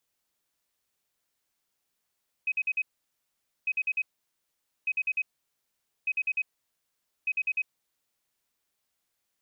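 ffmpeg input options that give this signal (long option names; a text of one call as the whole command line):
ffmpeg -f lavfi -i "aevalsrc='0.0631*sin(2*PI*2530*t)*clip(min(mod(mod(t,1.2),0.1),0.05-mod(mod(t,1.2),0.1))/0.005,0,1)*lt(mod(t,1.2),0.4)':duration=6:sample_rate=44100" out.wav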